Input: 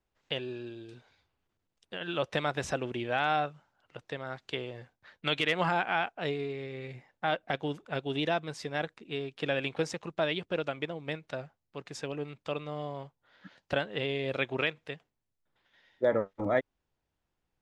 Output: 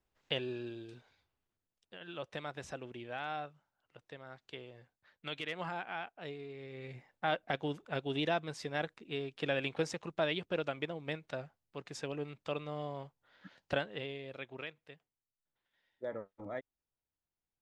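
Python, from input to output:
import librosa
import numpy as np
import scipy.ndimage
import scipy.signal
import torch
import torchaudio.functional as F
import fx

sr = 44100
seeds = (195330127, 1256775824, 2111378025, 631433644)

y = fx.gain(x, sr, db=fx.line((0.76, -1.0), (1.96, -11.5), (6.44, -11.5), (6.96, -3.0), (13.74, -3.0), (14.3, -14.0)))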